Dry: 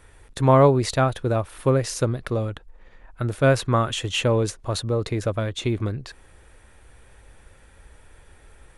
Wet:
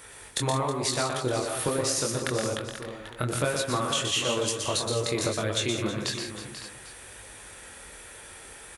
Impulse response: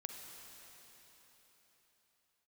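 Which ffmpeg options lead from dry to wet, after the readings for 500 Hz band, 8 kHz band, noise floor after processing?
-7.0 dB, +6.0 dB, -46 dBFS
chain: -filter_complex "[0:a]highpass=f=240:p=1,highshelf=f=3200:g=11,acompressor=threshold=0.0316:ratio=10,flanger=delay=19:depth=5.4:speed=1.1,asplit=2[s0][s1];[s1]aecho=0:1:121|169|319|488|559|797:0.531|0.299|0.2|0.282|0.237|0.106[s2];[s0][s2]amix=inputs=2:normalize=0,volume=2.51"

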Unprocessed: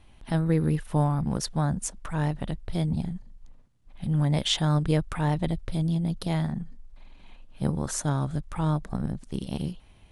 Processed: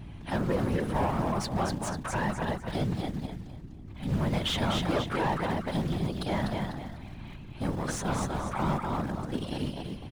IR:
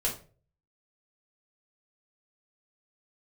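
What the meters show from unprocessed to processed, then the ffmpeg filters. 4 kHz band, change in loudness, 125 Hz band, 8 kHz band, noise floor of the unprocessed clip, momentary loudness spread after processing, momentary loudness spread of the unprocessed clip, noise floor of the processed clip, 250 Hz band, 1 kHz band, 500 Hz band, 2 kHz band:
-2.0 dB, -3.0 dB, -6.0 dB, -5.0 dB, -55 dBFS, 12 LU, 10 LU, -44 dBFS, -2.5 dB, +3.0 dB, +1.5 dB, +4.0 dB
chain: -filter_complex "[0:a]asplit=2[s0][s1];[s1]aecho=0:1:248|496|744|992:0.501|0.14|0.0393|0.011[s2];[s0][s2]amix=inputs=2:normalize=0,acrusher=bits=7:mode=log:mix=0:aa=0.000001,asplit=2[s3][s4];[s4]highpass=f=720:p=1,volume=15.8,asoftclip=type=tanh:threshold=0.316[s5];[s3][s5]amix=inputs=2:normalize=0,lowpass=f=2100:p=1,volume=0.501,aeval=exprs='val(0)+0.0224*(sin(2*PI*60*n/s)+sin(2*PI*2*60*n/s)/2+sin(2*PI*3*60*n/s)/3+sin(2*PI*4*60*n/s)/4+sin(2*PI*5*60*n/s)/5)':c=same,afftfilt=real='hypot(re,im)*cos(2*PI*random(0))':imag='hypot(re,im)*sin(2*PI*random(1))':win_size=512:overlap=0.75,volume=0.75"

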